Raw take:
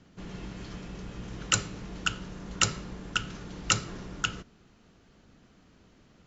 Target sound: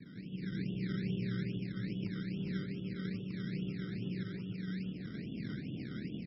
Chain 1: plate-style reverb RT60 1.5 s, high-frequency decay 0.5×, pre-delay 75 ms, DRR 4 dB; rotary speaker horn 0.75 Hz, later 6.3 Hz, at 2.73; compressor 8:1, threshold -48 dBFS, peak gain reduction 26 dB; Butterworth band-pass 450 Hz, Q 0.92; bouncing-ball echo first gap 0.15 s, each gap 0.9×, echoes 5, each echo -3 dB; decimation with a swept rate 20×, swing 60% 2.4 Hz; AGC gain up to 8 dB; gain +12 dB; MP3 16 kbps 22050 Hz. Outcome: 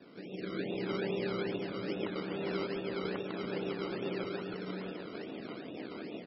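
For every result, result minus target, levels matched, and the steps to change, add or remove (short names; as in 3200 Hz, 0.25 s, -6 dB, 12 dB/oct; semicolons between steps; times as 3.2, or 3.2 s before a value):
500 Hz band +11.5 dB; compressor: peak gain reduction -6.5 dB
change: Butterworth band-pass 200 Hz, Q 0.92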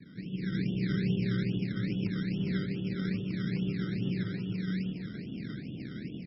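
compressor: peak gain reduction -6.5 dB
change: compressor 8:1, threshold -55.5 dBFS, peak gain reduction 32.5 dB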